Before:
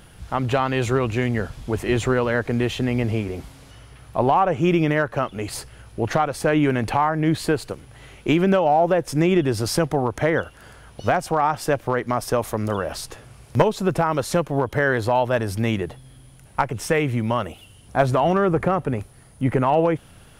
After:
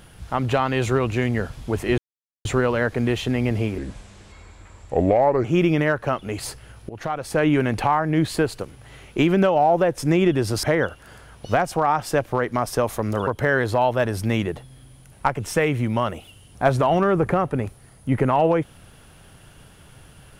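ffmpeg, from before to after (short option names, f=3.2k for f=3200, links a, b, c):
-filter_complex "[0:a]asplit=7[a][b][c][d][e][f][g];[a]atrim=end=1.98,asetpts=PTS-STARTPTS,afade=t=out:st=1.976:d=0.004:c=hsin,apad=pad_dur=0.47[h];[b]atrim=start=1.98:end=3.314,asetpts=PTS-STARTPTS,afade=t=in:d=0.004:c=hsin[i];[c]atrim=start=3.31:end=4.54,asetpts=PTS-STARTPTS,asetrate=32634,aresample=44100,atrim=end_sample=73301,asetpts=PTS-STARTPTS[j];[d]atrim=start=4.536:end=5.99,asetpts=PTS-STARTPTS,afade=t=out:st=1.45:d=0.004:c=hsin:silence=0.133352[k];[e]atrim=start=5.99:end=9.732,asetpts=PTS-STARTPTS,afade=t=in:d=0.54:silence=0.133352[l];[f]atrim=start=10.178:end=12.822[m];[g]atrim=start=14.608[n];[h][i]concat=n=2:v=0:a=1[o];[o][j]acrossfade=d=0.004:c1=hsin:c2=hsin[p];[k][l]concat=n=2:v=0:a=1[q];[p][q]acrossfade=d=0.004:c1=hsin:c2=hsin[r];[r][m]acrossfade=d=0.004:c1=hsin:c2=hsin[s];[s][n]acrossfade=d=0.004:c1=hsin:c2=hsin"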